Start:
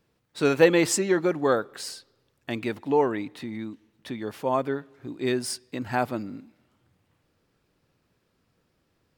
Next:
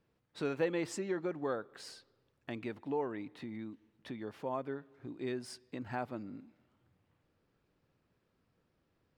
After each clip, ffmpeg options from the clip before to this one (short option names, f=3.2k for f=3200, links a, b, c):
-af "lowpass=f=2.8k:p=1,acompressor=threshold=-40dB:ratio=1.5,volume=-5.5dB"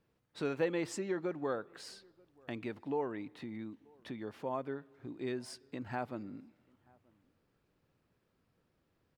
-filter_complex "[0:a]asplit=2[a][b];[b]adelay=932.9,volume=-28dB,highshelf=f=4k:g=-21[c];[a][c]amix=inputs=2:normalize=0"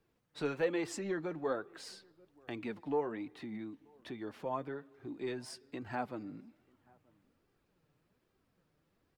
-filter_complex "[0:a]flanger=delay=2.5:depth=4.3:regen=45:speed=1.2:shape=sinusoidal,acrossover=split=390|780[a][b][c];[a]asoftclip=type=tanh:threshold=-39.5dB[d];[d][b][c]amix=inputs=3:normalize=0,volume=4.5dB"